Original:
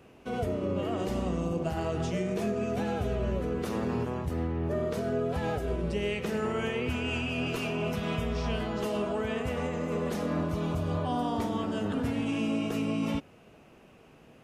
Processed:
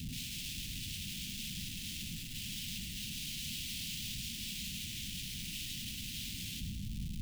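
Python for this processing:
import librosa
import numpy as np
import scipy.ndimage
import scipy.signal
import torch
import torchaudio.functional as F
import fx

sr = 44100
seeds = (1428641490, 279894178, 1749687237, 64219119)

y = fx.delta_mod(x, sr, bps=32000, step_db=-46.0)
y = fx.rider(y, sr, range_db=4, speed_s=2.0)
y = fx.cheby_harmonics(y, sr, harmonics=(4, 7), levels_db=(-23, -11), full_scale_db=-19.0)
y = 10.0 ** (-33.0 / 20.0) * (np.abs((y / 10.0 ** (-33.0 / 20.0) + 3.0) % 4.0 - 2.0) - 1.0)
y = fx.stretch_vocoder_free(y, sr, factor=0.5)
y = fx.schmitt(y, sr, flips_db=-51.0)
y = scipy.signal.sosfilt(scipy.signal.ellip(3, 1.0, 70, [210.0, 2900.0], 'bandstop', fs=sr, output='sos'), y)
y = fx.echo_feedback(y, sr, ms=103, feedback_pct=52, wet_db=-8.5)
y = y * 10.0 ** (6.0 / 20.0)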